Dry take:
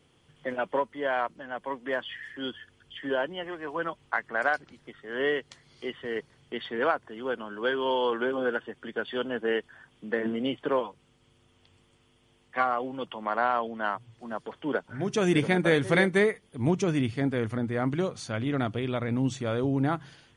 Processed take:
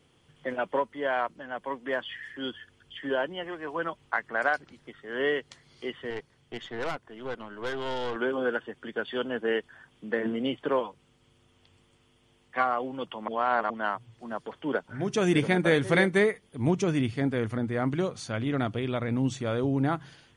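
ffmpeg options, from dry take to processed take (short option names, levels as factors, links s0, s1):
-filter_complex "[0:a]asettb=1/sr,asplit=3[s0][s1][s2];[s0]atrim=end=6.104[s3];[s1]atrim=start=6.1:end=8.16,asetpts=PTS-STARTPTS,afade=t=in:d=0.004:c=qsin,afade=t=out:st=2.056:d=0.004:c=qsin,aeval=exprs='(tanh(25.1*val(0)+0.7)-tanh(0.7))/25.1':c=same[s4];[s2]atrim=start=8.156[s5];[s3][s4]acrossfade=d=0.004:c1=hsin:c2=qsin[s6];[s6][s5]acrossfade=d=0.004:c1=qsin:c2=hsin,asplit=3[s7][s8][s9];[s7]atrim=end=13.282[s10];[s8]atrim=start=13.278:end=13.702,asetpts=PTS-STARTPTS,areverse[s11];[s9]atrim=start=13.698[s12];[s10][s11]acrossfade=d=0.004:c1=hsin:c2=hsin[s13];[s13][s12]acrossfade=d=0.004:c1=hsin:c2=hsin"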